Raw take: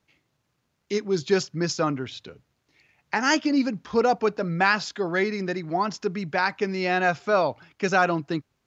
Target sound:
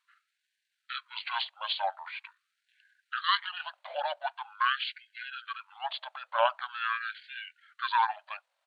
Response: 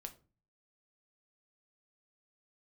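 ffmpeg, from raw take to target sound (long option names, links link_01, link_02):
-af "asetrate=27781,aresample=44100,atempo=1.5874,afftfilt=real='re*gte(b*sr/1024,510*pow(1500/510,0.5+0.5*sin(2*PI*0.44*pts/sr)))':imag='im*gte(b*sr/1024,510*pow(1500/510,0.5+0.5*sin(2*PI*0.44*pts/sr)))':win_size=1024:overlap=0.75"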